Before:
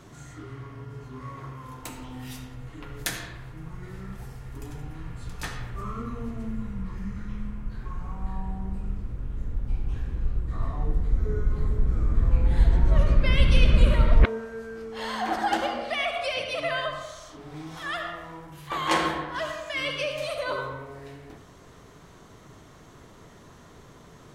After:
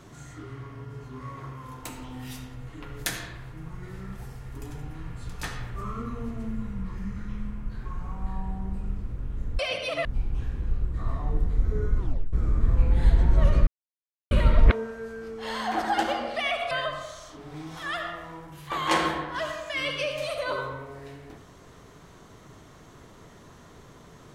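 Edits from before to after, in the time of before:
11.53 tape stop 0.34 s
13.21–13.85 mute
16.25–16.71 move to 9.59

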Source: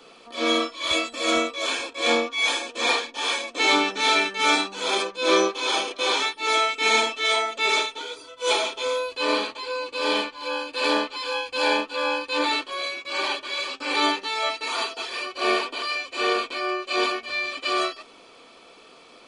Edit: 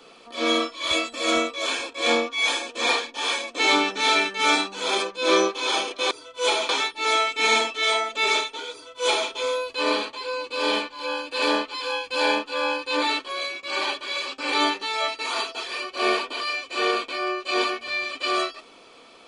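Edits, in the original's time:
8.14–8.72 copy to 6.11

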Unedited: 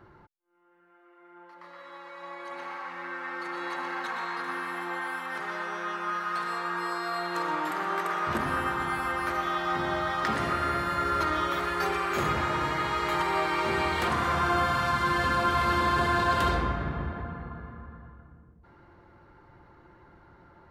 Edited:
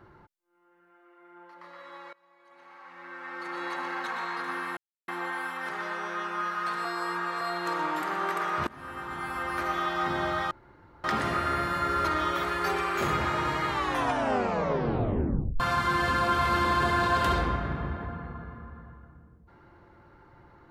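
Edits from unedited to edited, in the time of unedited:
2.13–3.59 fade in quadratic, from -23 dB
4.77 insert silence 0.31 s
6.54–7.1 reverse
8.36–9.4 fade in, from -23 dB
10.2 insert room tone 0.53 s
12.83 tape stop 1.93 s

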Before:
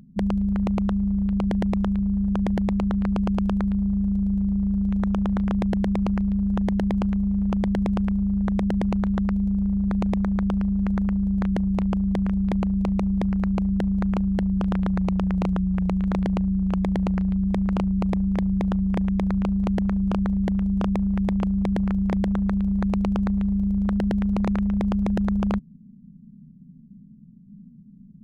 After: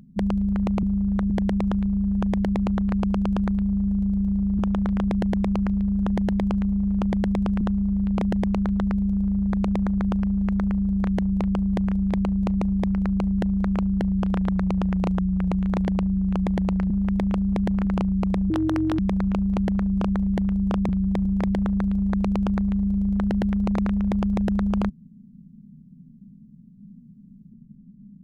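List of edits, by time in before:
0.83–1.43 swap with 8.12–8.59
4.72–5.1 cut
17.28–17.64 swap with 20.99–21.94
18.29–19.09 speed 164%

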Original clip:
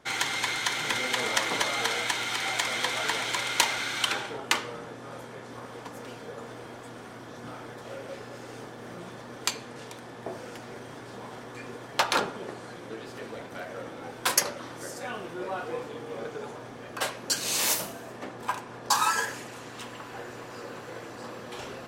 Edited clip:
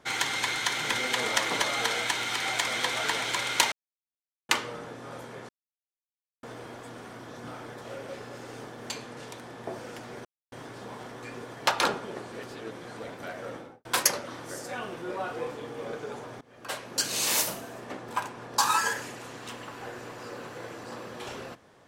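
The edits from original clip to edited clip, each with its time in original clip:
3.72–4.49 mute
5.49–6.43 mute
8.9–9.49 cut
10.84 insert silence 0.27 s
12.64–13.29 reverse
13.85–14.17 studio fade out
16.73–17.33 fade in, from -21.5 dB

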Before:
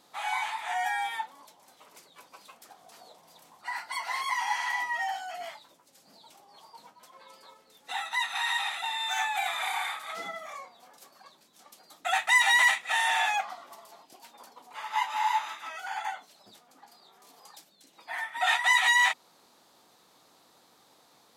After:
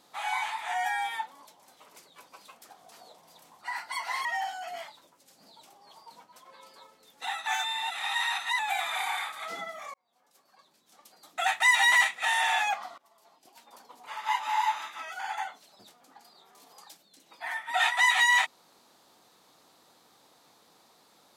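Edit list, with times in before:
4.25–4.92 cut
8.14–9.26 reverse
10.61–12.08 fade in
13.65–14.6 fade in, from -21.5 dB

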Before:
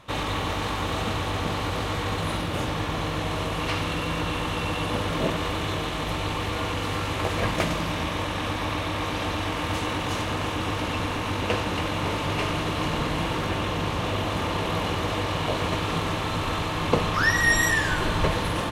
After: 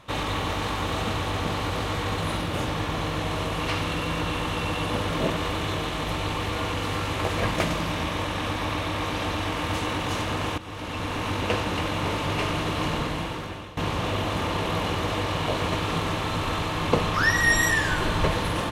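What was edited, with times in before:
10.58–11.23 fade in, from -15 dB
12.9–13.77 fade out, to -18 dB

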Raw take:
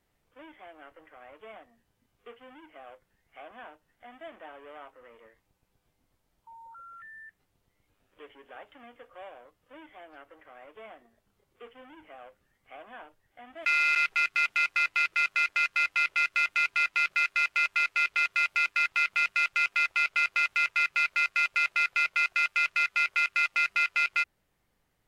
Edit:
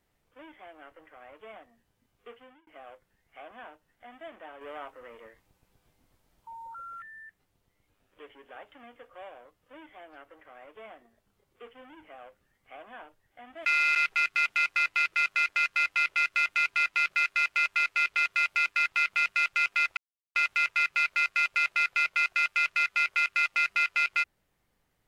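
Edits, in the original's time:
2.37–2.67 fade out linear
4.61–7.02 gain +5.5 dB
19.97–20.35 mute

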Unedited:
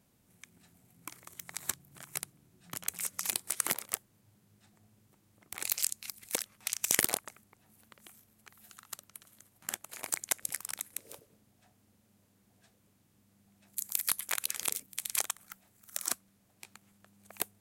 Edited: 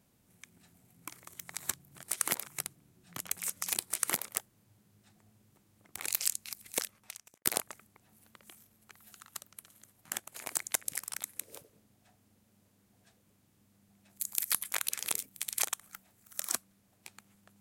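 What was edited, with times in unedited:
3.42–3.85 copy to 2.03
6.37–7.02 studio fade out

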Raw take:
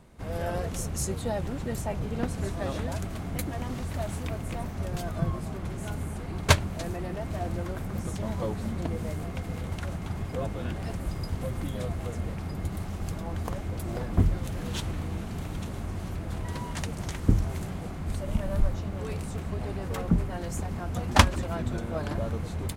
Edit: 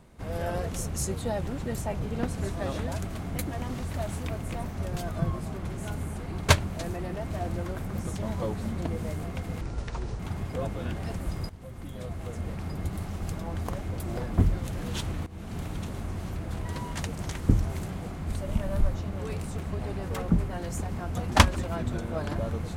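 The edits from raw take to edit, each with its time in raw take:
9.61–9.99 speed 65%
11.29–12.45 fade in, from -15.5 dB
15.06–15.36 fade in, from -18 dB

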